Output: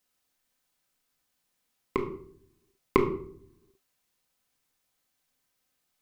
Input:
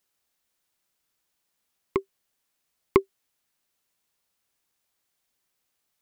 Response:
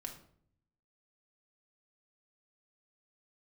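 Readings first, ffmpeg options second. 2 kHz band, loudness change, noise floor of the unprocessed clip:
+0.5 dB, −2.5 dB, −78 dBFS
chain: -filter_complex "[1:a]atrim=start_sample=2205[link_01];[0:a][link_01]afir=irnorm=-1:irlink=0,volume=3.5dB"

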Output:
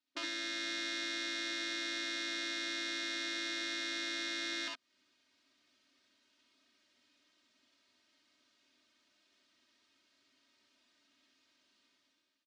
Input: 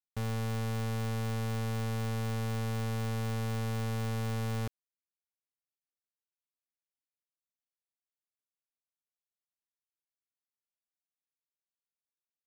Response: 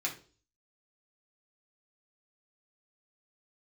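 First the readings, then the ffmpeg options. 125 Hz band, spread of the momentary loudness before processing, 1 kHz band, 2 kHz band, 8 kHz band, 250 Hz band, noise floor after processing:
below −40 dB, 0 LU, −8.0 dB, +7.5 dB, +2.5 dB, −8.0 dB, −78 dBFS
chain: -filter_complex "[0:a]aemphasis=mode=production:type=50fm,afftfilt=real='re*lt(hypot(re,im),0.0158)':imag='im*lt(hypot(re,im),0.0158)':win_size=1024:overlap=0.75,aecho=1:1:3.2:0.98,dynaudnorm=framelen=180:gausssize=7:maxgain=15.5dB,asplit=2[link_01][link_02];[link_02]alimiter=limit=-15.5dB:level=0:latency=1,volume=0dB[link_03];[link_01][link_03]amix=inputs=2:normalize=0,acompressor=threshold=-28dB:ratio=5,highpass=140,equalizer=frequency=140:width_type=q:width=4:gain=5,equalizer=frequency=260:width_type=q:width=4:gain=10,equalizer=frequency=820:width_type=q:width=4:gain=-8,lowpass=frequency=4500:width=0.5412,lowpass=frequency=4500:width=1.3066,asplit=2[link_04][link_05];[link_05]aecho=0:1:62|72:0.708|0.501[link_06];[link_04][link_06]amix=inputs=2:normalize=0"

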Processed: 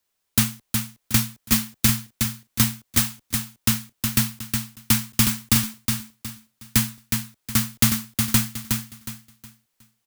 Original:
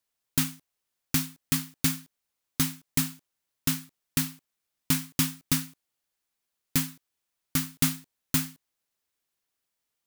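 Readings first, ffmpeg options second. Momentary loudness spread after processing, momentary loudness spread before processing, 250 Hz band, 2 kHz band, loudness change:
8 LU, 8 LU, +6.5 dB, +8.0 dB, +6.5 dB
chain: -af "afreqshift=-40,aecho=1:1:365|730|1095|1460:0.562|0.169|0.0506|0.0152,volume=6.5dB"

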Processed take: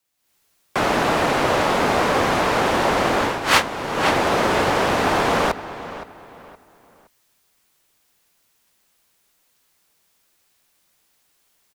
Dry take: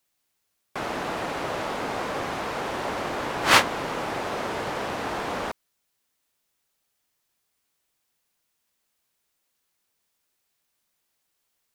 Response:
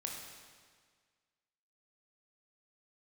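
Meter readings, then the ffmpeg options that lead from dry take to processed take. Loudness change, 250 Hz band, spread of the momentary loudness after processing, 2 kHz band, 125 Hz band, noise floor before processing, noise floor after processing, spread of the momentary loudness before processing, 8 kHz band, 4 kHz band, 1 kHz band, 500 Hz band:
+7.5 dB, +10.0 dB, 9 LU, +6.5 dB, +10.0 dB, −76 dBFS, −65 dBFS, 13 LU, +5.0 dB, +5.5 dB, +8.5 dB, +10.0 dB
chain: -filter_complex "[0:a]afreqshift=-18,asplit=2[link_01][link_02];[link_02]adelay=518,lowpass=frequency=3800:poles=1,volume=-14dB,asplit=2[link_03][link_04];[link_04]adelay=518,lowpass=frequency=3800:poles=1,volume=0.32,asplit=2[link_05][link_06];[link_06]adelay=518,lowpass=frequency=3800:poles=1,volume=0.32[link_07];[link_01][link_03][link_05][link_07]amix=inputs=4:normalize=0,dynaudnorm=framelen=170:gausssize=3:maxgain=12dB,volume=-1dB"

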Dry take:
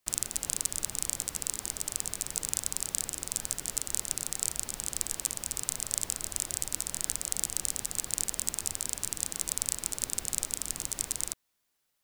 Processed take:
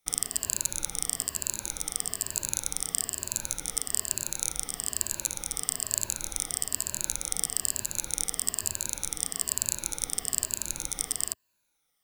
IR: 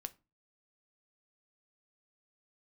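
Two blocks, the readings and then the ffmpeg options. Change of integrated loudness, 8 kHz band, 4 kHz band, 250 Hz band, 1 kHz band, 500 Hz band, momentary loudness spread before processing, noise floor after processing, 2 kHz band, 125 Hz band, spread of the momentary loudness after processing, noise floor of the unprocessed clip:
+2.0 dB, +2.0 dB, +2.0 dB, +1.5 dB, +2.0 dB, +2.0 dB, 2 LU, −76 dBFS, +2.0 dB, +1.5 dB, 3 LU, −78 dBFS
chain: -af "afftfilt=real='re*pow(10,13/40*sin(2*PI*(1.4*log(max(b,1)*sr/1024/100)/log(2)-(-1.1)*(pts-256)/sr)))':imag='im*pow(10,13/40*sin(2*PI*(1.4*log(max(b,1)*sr/1024/100)/log(2)-(-1.1)*(pts-256)/sr)))':win_size=1024:overlap=0.75"

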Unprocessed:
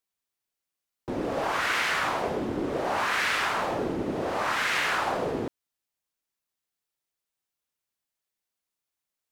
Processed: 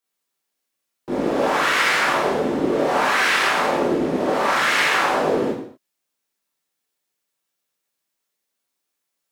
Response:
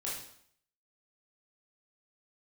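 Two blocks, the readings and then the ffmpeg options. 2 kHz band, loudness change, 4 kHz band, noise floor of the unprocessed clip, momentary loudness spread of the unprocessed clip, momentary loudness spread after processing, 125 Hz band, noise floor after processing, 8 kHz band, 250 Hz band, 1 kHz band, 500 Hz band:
+8.0 dB, +8.0 dB, +8.0 dB, below −85 dBFS, 7 LU, 6 LU, +4.5 dB, −79 dBFS, +8.0 dB, +9.0 dB, +8.0 dB, +9.5 dB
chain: -filter_complex "[0:a]lowshelf=frequency=140:width_type=q:width=1.5:gain=-8[link_01];[1:a]atrim=start_sample=2205,afade=type=out:start_time=0.34:duration=0.01,atrim=end_sample=15435[link_02];[link_01][link_02]afir=irnorm=-1:irlink=0,volume=6dB"

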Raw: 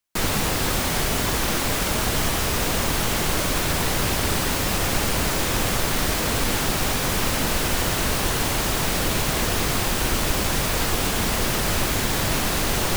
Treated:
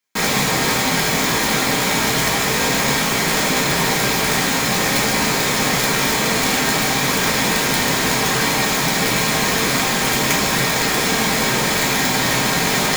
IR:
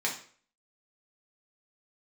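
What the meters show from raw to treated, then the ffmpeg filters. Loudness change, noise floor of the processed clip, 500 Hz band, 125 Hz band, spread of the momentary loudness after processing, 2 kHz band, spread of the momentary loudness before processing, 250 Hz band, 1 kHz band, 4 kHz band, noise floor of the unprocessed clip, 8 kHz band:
+5.5 dB, −19 dBFS, +5.0 dB, +1.5 dB, 0 LU, +8.5 dB, 0 LU, +5.5 dB, +6.5 dB, +6.5 dB, −24 dBFS, +5.5 dB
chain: -filter_complex "[0:a]aeval=exprs='(mod(4.47*val(0)+1,2)-1)/4.47':channel_layout=same[link_01];[1:a]atrim=start_sample=2205[link_02];[link_01][link_02]afir=irnorm=-1:irlink=0"

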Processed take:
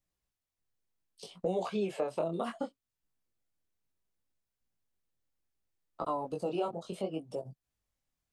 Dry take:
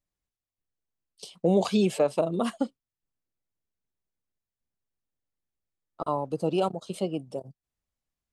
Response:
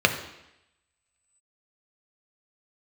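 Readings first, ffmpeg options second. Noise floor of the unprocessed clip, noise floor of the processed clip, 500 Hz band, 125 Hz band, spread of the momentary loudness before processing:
below −85 dBFS, below −85 dBFS, −7.0 dB, −11.0 dB, 15 LU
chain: -filter_complex "[0:a]acrossover=split=390|2400[link_01][link_02][link_03];[link_01]acompressor=threshold=-38dB:ratio=4[link_04];[link_02]acompressor=threshold=-26dB:ratio=4[link_05];[link_03]acompressor=threshold=-53dB:ratio=4[link_06];[link_04][link_05][link_06]amix=inputs=3:normalize=0,flanger=delay=16.5:depth=7.7:speed=0.67,asplit=2[link_07][link_08];[link_08]acompressor=threshold=-44dB:ratio=6,volume=2dB[link_09];[link_07][link_09]amix=inputs=2:normalize=0,volume=-2.5dB"

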